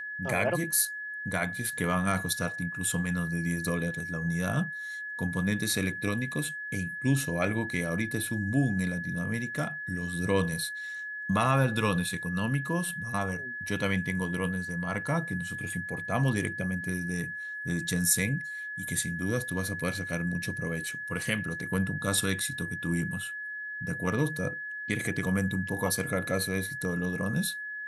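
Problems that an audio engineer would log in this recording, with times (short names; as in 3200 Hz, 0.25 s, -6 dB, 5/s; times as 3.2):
tone 1700 Hz -35 dBFS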